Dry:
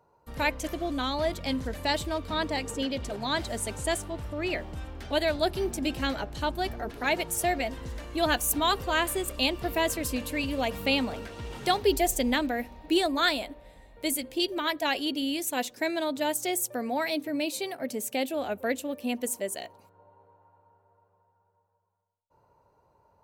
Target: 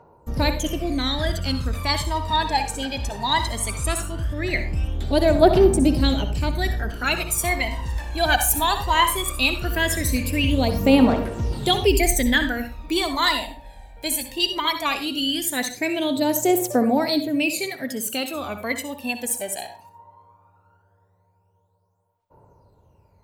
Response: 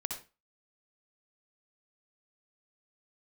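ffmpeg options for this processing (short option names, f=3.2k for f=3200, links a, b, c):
-filter_complex "[0:a]aphaser=in_gain=1:out_gain=1:delay=1.3:decay=0.75:speed=0.18:type=triangular,asplit=2[a][b];[1:a]atrim=start_sample=2205[c];[b][c]afir=irnorm=-1:irlink=0,volume=-1.5dB[d];[a][d]amix=inputs=2:normalize=0,volume=-1.5dB"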